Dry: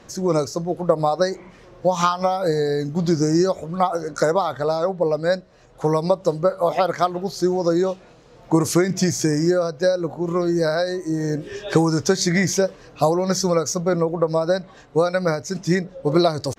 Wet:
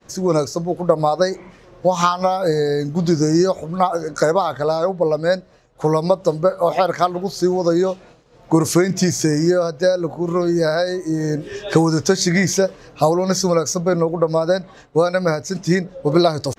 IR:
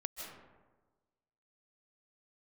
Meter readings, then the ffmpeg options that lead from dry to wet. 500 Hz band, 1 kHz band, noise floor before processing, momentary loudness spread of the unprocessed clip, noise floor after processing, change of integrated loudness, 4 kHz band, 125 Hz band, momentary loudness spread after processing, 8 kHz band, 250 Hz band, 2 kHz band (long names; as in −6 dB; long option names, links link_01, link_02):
+2.5 dB, +2.5 dB, −48 dBFS, 5 LU, −48 dBFS, +2.5 dB, +2.5 dB, +2.5 dB, 5 LU, +2.5 dB, +2.5 dB, +2.5 dB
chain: -af "agate=range=-33dB:threshold=-43dB:ratio=3:detection=peak,volume=2.5dB"